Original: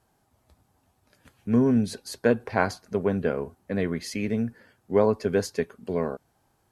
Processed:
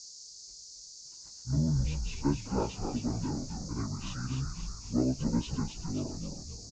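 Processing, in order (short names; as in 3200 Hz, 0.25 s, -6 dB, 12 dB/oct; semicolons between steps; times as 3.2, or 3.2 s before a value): pitch shift by moving bins -9 st; frequency-shifting echo 0.265 s, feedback 48%, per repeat -88 Hz, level -5 dB; band noise 4400–7000 Hz -42 dBFS; gain -7 dB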